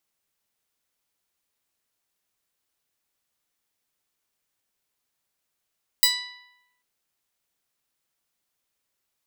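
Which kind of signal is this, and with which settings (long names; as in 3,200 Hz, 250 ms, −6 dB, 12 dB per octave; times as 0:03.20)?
Karplus-Strong string B5, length 0.79 s, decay 0.99 s, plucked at 0.08, bright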